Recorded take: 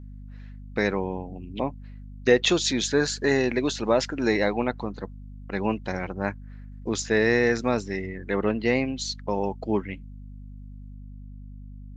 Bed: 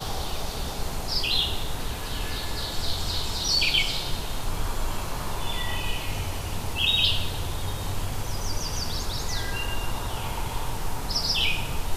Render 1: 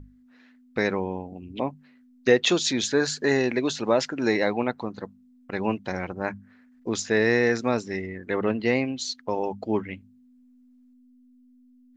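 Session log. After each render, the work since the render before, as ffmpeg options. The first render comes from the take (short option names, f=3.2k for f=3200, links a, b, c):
-af "bandreject=f=50:t=h:w=6,bandreject=f=100:t=h:w=6,bandreject=f=150:t=h:w=6,bandreject=f=200:t=h:w=6"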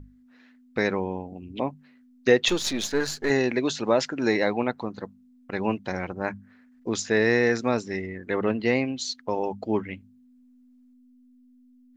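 -filter_complex "[0:a]asettb=1/sr,asplit=3[a][b][c];[a]atrim=end=2.484[d];[b]atrim=start=2.48:end=3.3,asetpts=PTS-STARTPTS,afade=t=in:d=0.004:c=qsin,afade=t=out:st=0.816:d=0.004:c=qsin,aeval=exprs='if(lt(val(0),0),0.447*val(0),val(0))':c=same[e];[c]atrim=start=3.296[f];[d][e]acrossfade=d=0.004:c1=hsin:c2=qsin[g];[g][f]acrossfade=d=0.004:c1=qsin:c2=hsin"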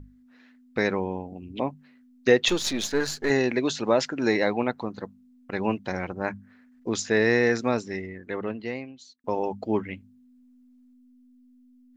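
-filter_complex "[0:a]asplit=2[a][b];[a]atrim=end=9.24,asetpts=PTS-STARTPTS,afade=t=out:st=7.63:d=1.61[c];[b]atrim=start=9.24,asetpts=PTS-STARTPTS,afade=t=in:d=0.004:c=hsin[d];[c][d]concat=n=2:v=0:a=1"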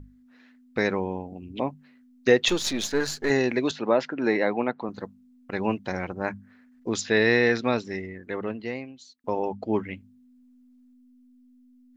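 -filter_complex "[0:a]asettb=1/sr,asplit=3[a][b][c];[a]atrim=end=3.714[d];[b]atrim=start=3.71:end=4.89,asetpts=PTS-STARTPTS,afade=t=in:d=0.004:c=qsin,afade=t=out:st=1.176:d=0.004:c=qsin,highpass=160,lowpass=2.9k[e];[c]atrim=start=4.886[f];[d][e]acrossfade=d=0.004:c1=hsin:c2=qsin[g];[g][f]acrossfade=d=0.004:c1=qsin:c2=hsin,asettb=1/sr,asplit=3[h][i][j];[h]atrim=end=7.014[k];[i]atrim=start=7.01:end=7.85,asetpts=PTS-STARTPTS,afade=t=in:d=0.004:c=qsin,afade=t=out:st=0.836:d=0.004:c=qsin,lowpass=f=3.7k:t=q:w=2.2[l];[j]atrim=start=7.846[m];[k][l]acrossfade=d=0.004:c1=hsin:c2=qsin[n];[n][m]acrossfade=d=0.004:c1=qsin:c2=hsin,asettb=1/sr,asplit=3[o][p][q];[o]atrim=end=9.304[r];[p]atrim=start=9.3:end=9.73,asetpts=PTS-STARTPTS,afade=t=in:d=0.004:c=qsin,afade=t=out:st=0.426:d=0.004:c=qsin,highshelf=f=6.9k:g=-11.5[s];[q]atrim=start=9.726[t];[r][s]acrossfade=d=0.004:c1=hsin:c2=qsin[u];[u][t]acrossfade=d=0.004:c1=qsin:c2=hsin"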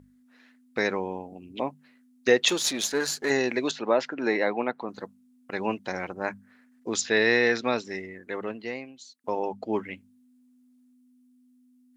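-af "highpass=f=310:p=1,equalizer=f=9.9k:t=o:w=0.97:g=8"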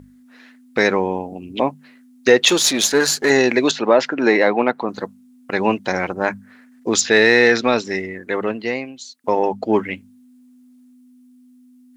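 -filter_complex "[0:a]asplit=2[a][b];[b]alimiter=limit=-14.5dB:level=0:latency=1:release=92,volume=0.5dB[c];[a][c]amix=inputs=2:normalize=0,acontrast=26"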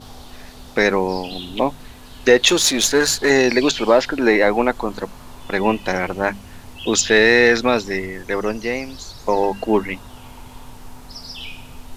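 -filter_complex "[1:a]volume=-9.5dB[a];[0:a][a]amix=inputs=2:normalize=0"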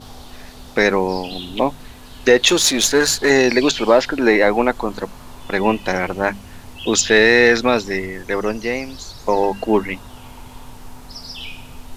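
-af "volume=1dB,alimiter=limit=-2dB:level=0:latency=1"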